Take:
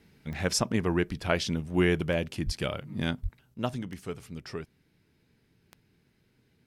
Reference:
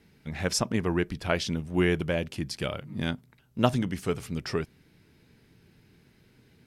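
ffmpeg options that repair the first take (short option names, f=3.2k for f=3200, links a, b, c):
-filter_complex "[0:a]adeclick=t=4,asplit=3[a][b][c];[a]afade=t=out:st=2.45:d=0.02[d];[b]highpass=f=140:w=0.5412,highpass=f=140:w=1.3066,afade=t=in:st=2.45:d=0.02,afade=t=out:st=2.57:d=0.02[e];[c]afade=t=in:st=2.57:d=0.02[f];[d][e][f]amix=inputs=3:normalize=0,asplit=3[g][h][i];[g]afade=t=out:st=3.22:d=0.02[j];[h]highpass=f=140:w=0.5412,highpass=f=140:w=1.3066,afade=t=in:st=3.22:d=0.02,afade=t=out:st=3.34:d=0.02[k];[i]afade=t=in:st=3.34:d=0.02[l];[j][k][l]amix=inputs=3:normalize=0,asetnsamples=n=441:p=0,asendcmd='3.54 volume volume 8dB',volume=0dB"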